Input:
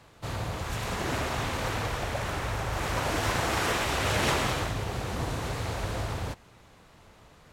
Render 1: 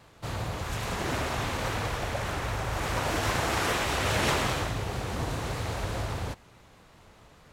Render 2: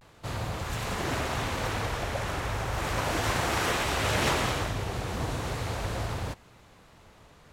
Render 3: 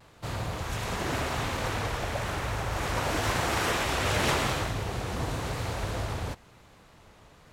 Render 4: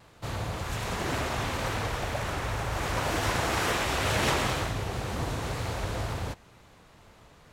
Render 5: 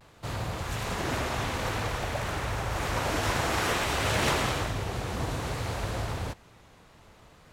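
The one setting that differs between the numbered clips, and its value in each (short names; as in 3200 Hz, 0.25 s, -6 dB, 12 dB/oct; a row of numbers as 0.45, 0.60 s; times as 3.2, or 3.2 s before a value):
vibrato, rate: 4.9, 0.36, 0.94, 2, 0.56 Hz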